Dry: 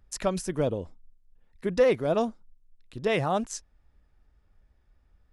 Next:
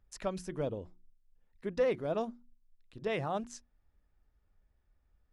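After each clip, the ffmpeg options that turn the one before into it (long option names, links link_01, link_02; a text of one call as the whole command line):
ffmpeg -i in.wav -af "highshelf=frequency=7500:gain=-10,bandreject=frequency=60:width_type=h:width=6,bandreject=frequency=120:width_type=h:width=6,bandreject=frequency=180:width_type=h:width=6,bandreject=frequency=240:width_type=h:width=6,bandreject=frequency=300:width_type=h:width=6,bandreject=frequency=360:width_type=h:width=6,volume=-8dB" out.wav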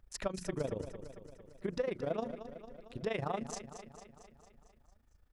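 ffmpeg -i in.wav -filter_complex "[0:a]tremolo=f=26:d=0.824,acompressor=threshold=-40dB:ratio=6,asplit=2[link_01][link_02];[link_02]aecho=0:1:226|452|678|904|1130|1356|1582:0.282|0.169|0.101|0.0609|0.0365|0.0219|0.0131[link_03];[link_01][link_03]amix=inputs=2:normalize=0,volume=8dB" out.wav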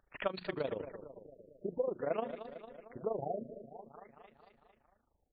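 ffmpeg -i in.wav -af "aemphasis=mode=production:type=riaa,adynamicsmooth=sensitivity=5.5:basefreq=3100,afftfilt=real='re*lt(b*sr/1024,650*pow(4800/650,0.5+0.5*sin(2*PI*0.5*pts/sr)))':imag='im*lt(b*sr/1024,650*pow(4800/650,0.5+0.5*sin(2*PI*0.5*pts/sr)))':win_size=1024:overlap=0.75,volume=3.5dB" out.wav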